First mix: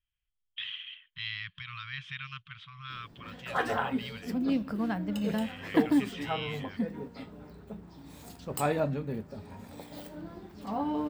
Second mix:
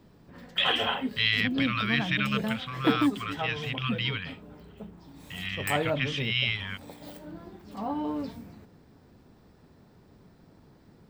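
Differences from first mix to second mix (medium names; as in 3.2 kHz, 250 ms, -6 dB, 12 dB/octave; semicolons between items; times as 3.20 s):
speech +12.0 dB; background: entry -2.90 s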